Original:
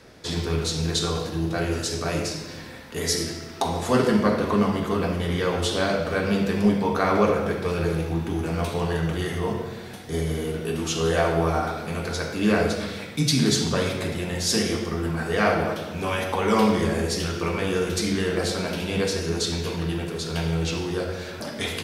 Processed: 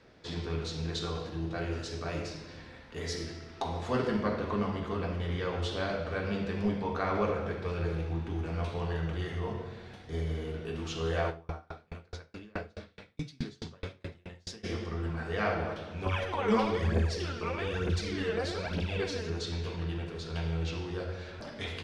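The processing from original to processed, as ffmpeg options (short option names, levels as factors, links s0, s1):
-filter_complex "[0:a]asplit=3[s0][s1][s2];[s0]afade=t=out:st=11.29:d=0.02[s3];[s1]aeval=exprs='val(0)*pow(10,-36*if(lt(mod(4.7*n/s,1),2*abs(4.7)/1000),1-mod(4.7*n/s,1)/(2*abs(4.7)/1000),(mod(4.7*n/s,1)-2*abs(4.7)/1000)/(1-2*abs(4.7)/1000))/20)':c=same,afade=t=in:st=11.29:d=0.02,afade=t=out:st=14.63:d=0.02[s4];[s2]afade=t=in:st=14.63:d=0.02[s5];[s3][s4][s5]amix=inputs=3:normalize=0,asettb=1/sr,asplit=3[s6][s7][s8];[s6]atrim=end=16.064[s9];[s7]atrim=start=16.06:end=19.3,asetpts=PTS-STARTPTS,afade=t=in:d=0.004:c=qsin,afade=t=out:st=3.236:d=0.004:c=qsin,aphaser=in_gain=1:out_gain=1:delay=4.8:decay=0.64:speed=1.1:type=triangular[s10];[s8]atrim=start=19.296[s11];[s9][s10]acrossfade=d=0.004:c1=hsin:c2=qsin[s12];[s12][s11]acrossfade=d=0.004:c1=qsin:c2=hsin,asubboost=boost=3:cutoff=92,lowpass=4400,volume=0.355"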